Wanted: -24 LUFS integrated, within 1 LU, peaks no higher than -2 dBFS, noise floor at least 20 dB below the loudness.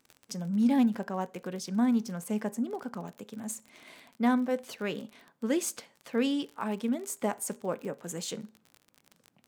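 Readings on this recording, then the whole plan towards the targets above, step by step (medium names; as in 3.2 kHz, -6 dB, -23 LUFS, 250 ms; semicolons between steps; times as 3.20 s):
tick rate 36 per s; loudness -31.5 LUFS; peak level -15.5 dBFS; loudness target -24.0 LUFS
-> de-click; trim +7.5 dB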